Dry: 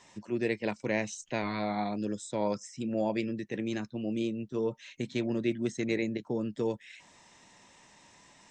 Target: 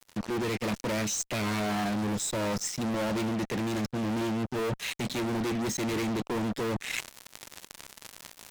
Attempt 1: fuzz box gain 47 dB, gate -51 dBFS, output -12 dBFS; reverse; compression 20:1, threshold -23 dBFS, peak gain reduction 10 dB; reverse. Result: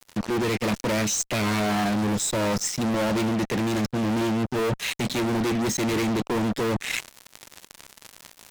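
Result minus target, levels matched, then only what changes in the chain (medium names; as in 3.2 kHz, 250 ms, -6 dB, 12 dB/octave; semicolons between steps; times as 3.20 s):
compression: peak gain reduction -5.5 dB
change: compression 20:1, threshold -29 dBFS, peak gain reduction 16 dB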